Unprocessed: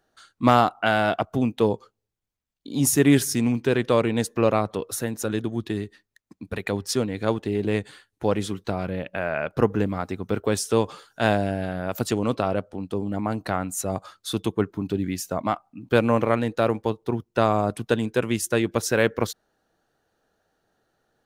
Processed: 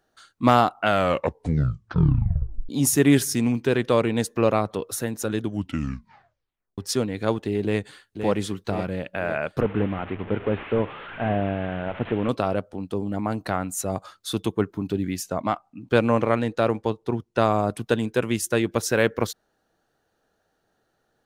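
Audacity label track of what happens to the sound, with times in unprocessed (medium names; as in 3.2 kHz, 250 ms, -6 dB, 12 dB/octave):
0.800000	0.800000	tape stop 1.89 s
5.420000	5.420000	tape stop 1.36 s
7.630000	8.280000	echo throw 520 ms, feedback 60%, level -7 dB
9.610000	12.290000	one-bit delta coder 16 kbps, step -32 dBFS
15.230000	17.390000	low-pass 9.7 kHz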